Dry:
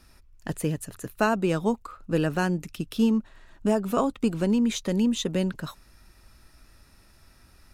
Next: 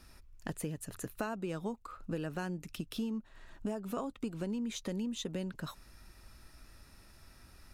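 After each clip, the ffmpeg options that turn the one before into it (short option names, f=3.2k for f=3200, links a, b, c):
-af "acompressor=threshold=-35dB:ratio=4,volume=-1.5dB"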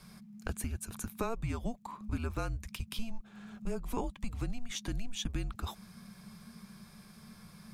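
-af "afreqshift=-230,volume=3dB"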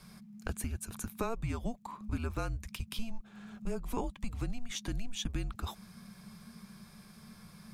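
-af anull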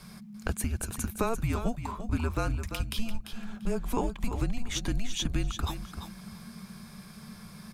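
-af "aecho=1:1:343|686|1029:0.355|0.0603|0.0103,volume=6dB"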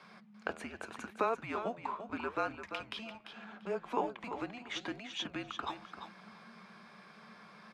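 -af "highpass=440,lowpass=2.6k,flanger=delay=3.7:depth=9.1:regen=88:speed=0.78:shape=sinusoidal,volume=5dB"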